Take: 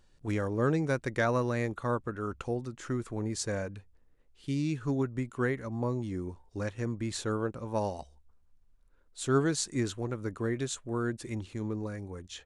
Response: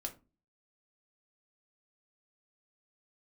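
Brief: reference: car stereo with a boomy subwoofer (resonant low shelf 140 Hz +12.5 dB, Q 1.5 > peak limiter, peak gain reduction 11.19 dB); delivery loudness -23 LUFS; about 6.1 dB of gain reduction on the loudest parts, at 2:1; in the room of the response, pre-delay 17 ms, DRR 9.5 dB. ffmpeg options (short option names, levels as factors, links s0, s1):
-filter_complex "[0:a]acompressor=threshold=0.0224:ratio=2,asplit=2[s0][s1];[1:a]atrim=start_sample=2205,adelay=17[s2];[s1][s2]afir=irnorm=-1:irlink=0,volume=0.398[s3];[s0][s3]amix=inputs=2:normalize=0,lowshelf=f=140:t=q:w=1.5:g=12.5,volume=3.98,alimiter=limit=0.178:level=0:latency=1"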